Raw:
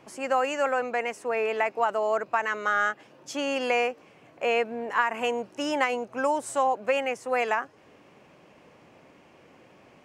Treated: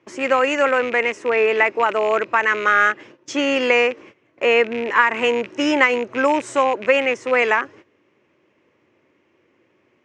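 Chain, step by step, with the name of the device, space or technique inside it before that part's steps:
noise gate −50 dBFS, range −17 dB
car door speaker with a rattle (loose part that buzzes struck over −47 dBFS, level −29 dBFS; loudspeaker in its box 84–6,600 Hz, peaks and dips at 95 Hz +4 dB, 170 Hz −7 dB, 350 Hz +8 dB, 740 Hz −9 dB, 2,000 Hz +5 dB, 4,600 Hz −5 dB)
level +9 dB

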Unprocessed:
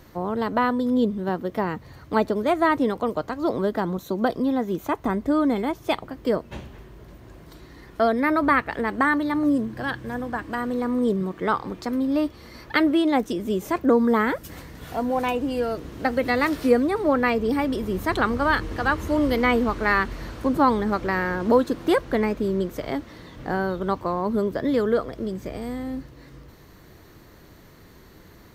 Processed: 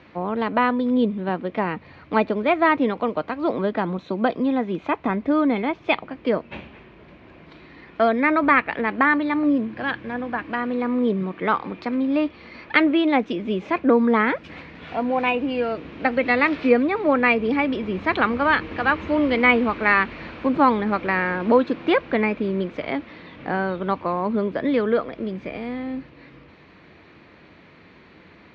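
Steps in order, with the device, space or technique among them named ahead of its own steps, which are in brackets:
guitar cabinet (loudspeaker in its box 110–3,800 Hz, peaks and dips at 120 Hz −9 dB, 390 Hz −3 dB, 2,400 Hz +10 dB)
level +2 dB

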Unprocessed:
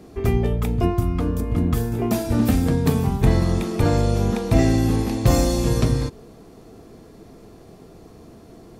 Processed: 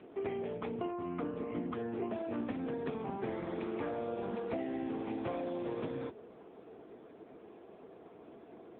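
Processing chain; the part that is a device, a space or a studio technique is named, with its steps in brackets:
voicemail (band-pass filter 330–3,100 Hz; downward compressor 8 to 1, threshold −30 dBFS, peak gain reduction 12.5 dB; level −3 dB; AMR narrowband 6.7 kbit/s 8,000 Hz)

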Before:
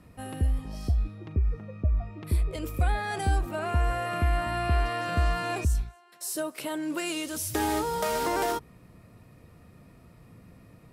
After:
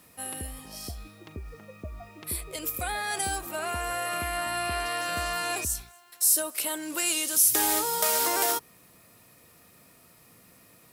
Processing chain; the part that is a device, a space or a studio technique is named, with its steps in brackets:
turntable without a phono preamp (RIAA equalisation recording; white noise bed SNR 36 dB)

